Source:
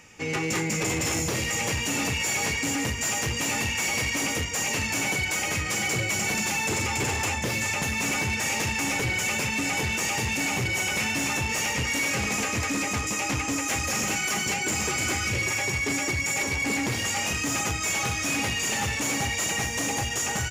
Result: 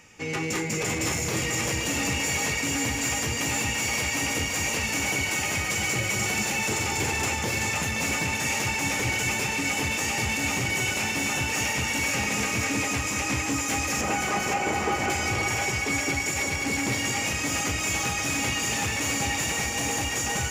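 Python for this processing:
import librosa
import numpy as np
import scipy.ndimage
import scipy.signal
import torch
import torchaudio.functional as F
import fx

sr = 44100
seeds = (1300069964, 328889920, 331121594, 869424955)

p1 = fx.curve_eq(x, sr, hz=(170.0, 760.0, 11000.0), db=(0, 9, -16), at=(14.01, 15.1))
p2 = p1 + fx.echo_split(p1, sr, split_hz=450.0, low_ms=201, high_ms=523, feedback_pct=52, wet_db=-4.5, dry=0)
y = F.gain(torch.from_numpy(p2), -1.5).numpy()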